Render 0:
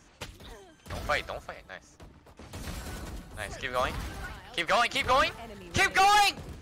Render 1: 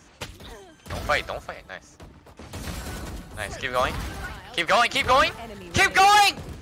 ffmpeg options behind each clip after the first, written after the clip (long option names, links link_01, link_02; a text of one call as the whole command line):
ffmpeg -i in.wav -af "highpass=41,volume=5.5dB" out.wav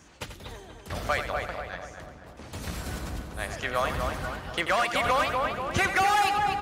ffmpeg -i in.wav -filter_complex "[0:a]asplit=2[link_01][link_02];[link_02]adelay=242,lowpass=frequency=2000:poles=1,volume=-6dB,asplit=2[link_03][link_04];[link_04]adelay=242,lowpass=frequency=2000:poles=1,volume=0.53,asplit=2[link_05][link_06];[link_06]adelay=242,lowpass=frequency=2000:poles=1,volume=0.53,asplit=2[link_07][link_08];[link_08]adelay=242,lowpass=frequency=2000:poles=1,volume=0.53,asplit=2[link_09][link_10];[link_10]adelay=242,lowpass=frequency=2000:poles=1,volume=0.53,asplit=2[link_11][link_12];[link_12]adelay=242,lowpass=frequency=2000:poles=1,volume=0.53,asplit=2[link_13][link_14];[link_14]adelay=242,lowpass=frequency=2000:poles=1,volume=0.53[link_15];[link_03][link_05][link_07][link_09][link_11][link_13][link_15]amix=inputs=7:normalize=0[link_16];[link_01][link_16]amix=inputs=2:normalize=0,acrossover=split=3000|6600[link_17][link_18][link_19];[link_17]acompressor=threshold=-20dB:ratio=4[link_20];[link_18]acompressor=threshold=-43dB:ratio=4[link_21];[link_19]acompressor=threshold=-39dB:ratio=4[link_22];[link_20][link_21][link_22]amix=inputs=3:normalize=0,asplit=2[link_23][link_24];[link_24]aecho=0:1:88:0.335[link_25];[link_23][link_25]amix=inputs=2:normalize=0,volume=-2dB" out.wav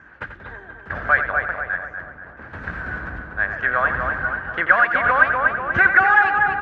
ffmpeg -i in.wav -af "lowpass=frequency=1600:width_type=q:width=9.1,volume=1dB" out.wav